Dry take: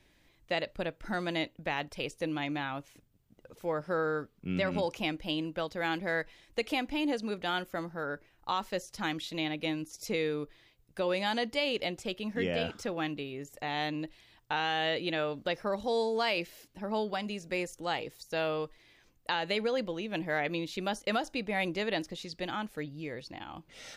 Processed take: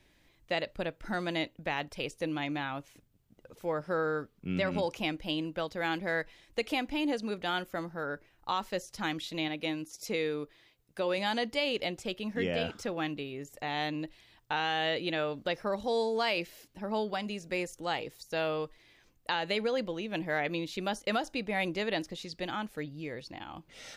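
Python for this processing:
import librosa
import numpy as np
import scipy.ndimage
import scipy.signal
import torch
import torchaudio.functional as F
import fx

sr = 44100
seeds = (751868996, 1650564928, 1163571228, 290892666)

y = fx.low_shelf(x, sr, hz=100.0, db=-10.5, at=(9.48, 11.18))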